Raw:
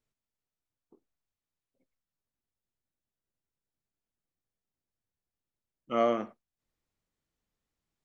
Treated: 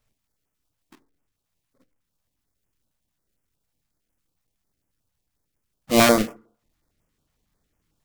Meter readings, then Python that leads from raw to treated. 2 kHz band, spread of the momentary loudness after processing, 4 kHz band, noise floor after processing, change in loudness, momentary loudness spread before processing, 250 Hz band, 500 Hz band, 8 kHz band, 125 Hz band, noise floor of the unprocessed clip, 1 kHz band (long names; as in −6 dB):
+20.0 dB, 9 LU, +22.0 dB, −80 dBFS, +11.0 dB, 11 LU, +14.0 dB, +8.5 dB, can't be measured, +19.5 dB, below −85 dBFS, +9.0 dB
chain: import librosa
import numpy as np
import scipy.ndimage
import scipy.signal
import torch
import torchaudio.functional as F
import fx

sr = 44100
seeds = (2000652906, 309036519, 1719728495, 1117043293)

y = fx.halfwave_hold(x, sr)
y = fx.rev_fdn(y, sr, rt60_s=0.53, lf_ratio=0.95, hf_ratio=0.45, size_ms=20.0, drr_db=16.0)
y = fx.filter_held_notch(y, sr, hz=11.0, low_hz=330.0, high_hz=4000.0)
y = F.gain(torch.from_numpy(y), 9.0).numpy()